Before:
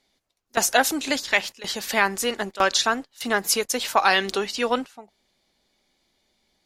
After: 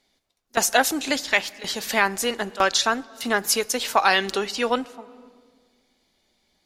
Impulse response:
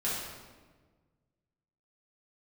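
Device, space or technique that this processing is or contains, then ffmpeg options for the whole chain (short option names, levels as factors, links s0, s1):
compressed reverb return: -filter_complex "[0:a]asplit=2[s0][s1];[1:a]atrim=start_sample=2205[s2];[s1][s2]afir=irnorm=-1:irlink=0,acompressor=threshold=0.0562:ratio=6,volume=0.158[s3];[s0][s3]amix=inputs=2:normalize=0"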